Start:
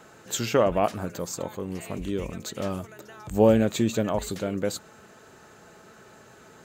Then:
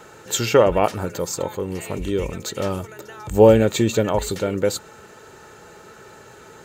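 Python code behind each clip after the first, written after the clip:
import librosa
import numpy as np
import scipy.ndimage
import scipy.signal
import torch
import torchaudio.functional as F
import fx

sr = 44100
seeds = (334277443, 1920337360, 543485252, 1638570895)

y = x + 0.37 * np.pad(x, (int(2.2 * sr / 1000.0), 0))[:len(x)]
y = y * librosa.db_to_amplitude(6.0)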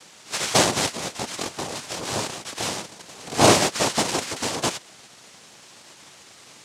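y = fx.spec_clip(x, sr, under_db=24)
y = fx.noise_vocoder(y, sr, seeds[0], bands=2)
y = y * librosa.db_to_amplitude(-3.5)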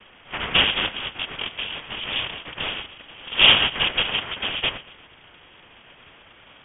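y = fx.echo_feedback(x, sr, ms=118, feedback_pct=45, wet_db=-19)
y = fx.freq_invert(y, sr, carrier_hz=3500)
y = y * librosa.db_to_amplitude(1.5)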